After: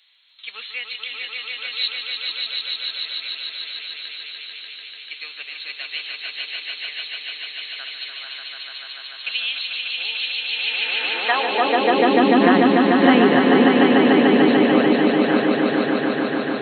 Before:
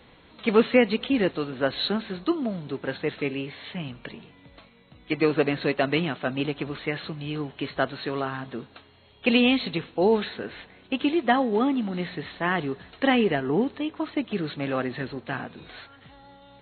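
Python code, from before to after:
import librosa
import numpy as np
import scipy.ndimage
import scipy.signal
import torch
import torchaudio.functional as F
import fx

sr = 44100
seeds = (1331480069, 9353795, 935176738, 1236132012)

y = fx.echo_swell(x, sr, ms=147, loudest=5, wet_db=-4)
y = fx.filter_sweep_highpass(y, sr, from_hz=3700.0, to_hz=230.0, start_s=10.46, end_s=12.37, q=1.1)
y = F.gain(torch.from_numpy(y), 3.5).numpy()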